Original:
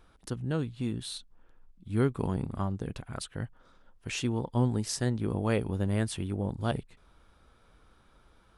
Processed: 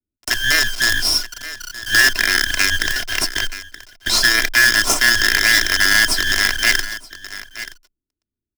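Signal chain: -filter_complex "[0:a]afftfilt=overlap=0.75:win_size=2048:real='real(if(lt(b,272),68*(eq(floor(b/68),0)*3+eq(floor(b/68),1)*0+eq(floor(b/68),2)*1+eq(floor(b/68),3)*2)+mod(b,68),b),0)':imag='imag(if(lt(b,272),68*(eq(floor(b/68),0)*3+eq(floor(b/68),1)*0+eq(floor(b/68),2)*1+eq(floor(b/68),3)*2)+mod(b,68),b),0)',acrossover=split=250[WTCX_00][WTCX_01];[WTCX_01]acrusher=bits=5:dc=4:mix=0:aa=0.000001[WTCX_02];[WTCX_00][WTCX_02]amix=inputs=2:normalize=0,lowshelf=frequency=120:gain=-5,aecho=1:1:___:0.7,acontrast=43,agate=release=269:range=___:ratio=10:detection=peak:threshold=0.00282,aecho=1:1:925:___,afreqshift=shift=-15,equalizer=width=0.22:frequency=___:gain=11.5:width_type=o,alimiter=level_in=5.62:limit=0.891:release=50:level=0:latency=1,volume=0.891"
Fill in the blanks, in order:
2.9, 0.251, 0.0794, 5.3k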